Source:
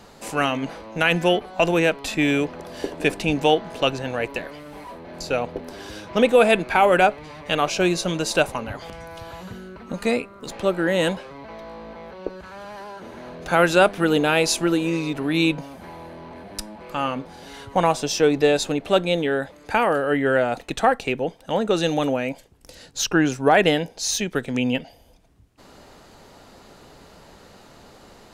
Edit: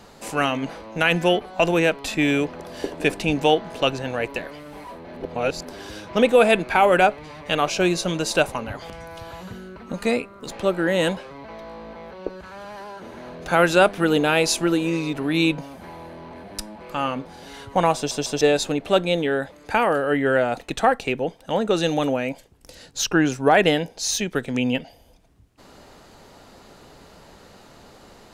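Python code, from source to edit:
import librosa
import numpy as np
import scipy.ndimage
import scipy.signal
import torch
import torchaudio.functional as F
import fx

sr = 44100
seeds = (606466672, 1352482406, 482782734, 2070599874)

y = fx.edit(x, sr, fx.reverse_span(start_s=5.16, length_s=0.49),
    fx.stutter_over(start_s=17.96, slice_s=0.15, count=3), tone=tone)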